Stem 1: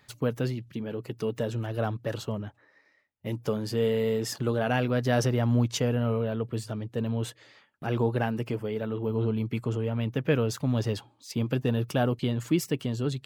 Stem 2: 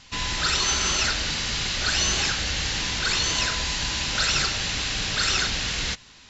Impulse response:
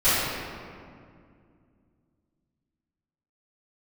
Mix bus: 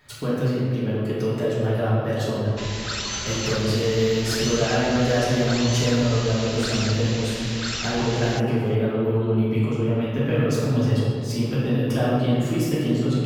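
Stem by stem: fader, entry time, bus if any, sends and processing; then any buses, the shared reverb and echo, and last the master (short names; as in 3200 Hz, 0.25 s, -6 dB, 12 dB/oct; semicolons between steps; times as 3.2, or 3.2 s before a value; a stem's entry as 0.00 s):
-2.0 dB, 0.00 s, send -7 dB, compressor 2.5:1, threshold -30 dBFS, peak gain reduction 8 dB
-6.0 dB, 2.45 s, no send, dry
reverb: on, RT60 2.2 s, pre-delay 3 ms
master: dry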